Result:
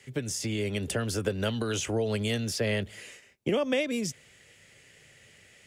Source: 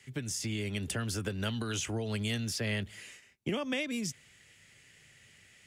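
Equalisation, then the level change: bell 510 Hz +8.5 dB 0.99 oct; +2.5 dB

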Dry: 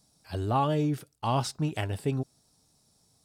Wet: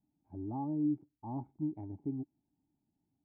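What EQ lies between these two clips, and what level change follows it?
vocal tract filter u; air absorption 240 m; bell 480 Hz -12 dB 0.31 oct; 0.0 dB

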